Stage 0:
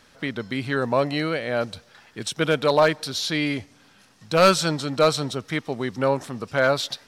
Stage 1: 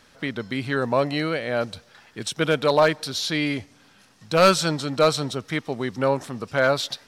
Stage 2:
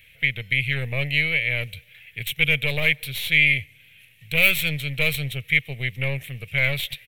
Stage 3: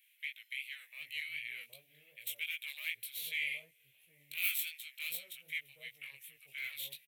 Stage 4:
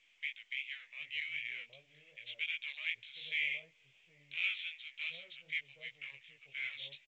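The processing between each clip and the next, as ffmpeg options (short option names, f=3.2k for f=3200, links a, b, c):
-af anull
-af "equalizer=f=960:w=1.8:g=-11.5,aeval=exprs='0.531*(cos(1*acos(clip(val(0)/0.531,-1,1)))-cos(1*PI/2))+0.0841*(cos(3*acos(clip(val(0)/0.531,-1,1)))-cos(3*PI/2))+0.0596*(cos(5*acos(clip(val(0)/0.531,-1,1)))-cos(5*PI/2))+0.0473*(cos(8*acos(clip(val(0)/0.531,-1,1)))-cos(8*PI/2))':c=same,firequalizer=gain_entry='entry(140,0);entry(200,-18);entry(320,-22);entry(470,-11);entry(860,-17);entry(1400,-16);entry(2200,12);entry(3200,3);entry(4900,-21);entry(13000,10)':delay=0.05:min_phase=1,volume=2.5dB"
-filter_complex "[0:a]aderivative,flanger=delay=17:depth=5:speed=2.7,acrossover=split=810[a][b];[a]adelay=770[c];[c][b]amix=inputs=2:normalize=0,volume=-6.5dB"
-af "aresample=8000,aresample=44100,volume=1.5dB" -ar 16000 -c:a pcm_mulaw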